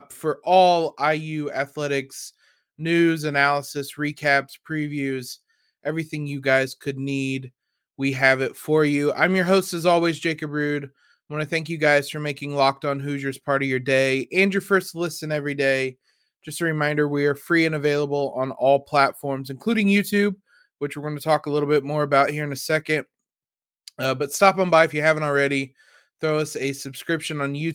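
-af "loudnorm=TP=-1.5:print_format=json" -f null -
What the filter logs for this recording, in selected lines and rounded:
"input_i" : "-22.3",
"input_tp" : "-2.4",
"input_lra" : "3.1",
"input_thresh" : "-32.8",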